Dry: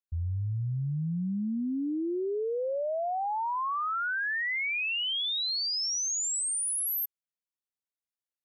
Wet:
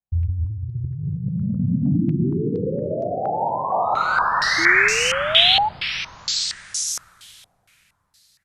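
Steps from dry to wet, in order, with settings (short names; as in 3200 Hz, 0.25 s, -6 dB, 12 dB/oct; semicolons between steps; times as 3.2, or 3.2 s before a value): 3.83–5.54 half-waves squared off; on a send: echo 0.508 s -10.5 dB; on the sum: plate-style reverb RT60 4.1 s, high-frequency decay 0.75×, DRR -8.5 dB; 4.58–5.69 painted sound rise 320–880 Hz -23 dBFS; resonant low shelf 220 Hz +12.5 dB, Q 1.5; negative-ratio compressor -15 dBFS, ratio -1; stepped low-pass 4.3 Hz 740–5900 Hz; gain -6.5 dB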